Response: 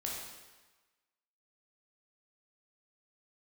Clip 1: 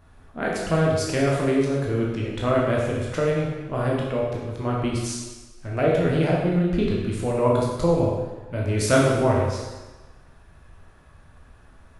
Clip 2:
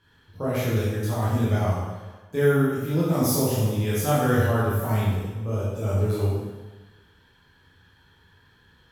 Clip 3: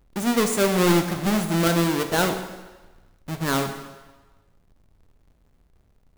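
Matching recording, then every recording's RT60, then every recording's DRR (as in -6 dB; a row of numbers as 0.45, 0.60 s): 1; 1.2, 1.2, 1.2 s; -3.5, -9.0, 6.0 dB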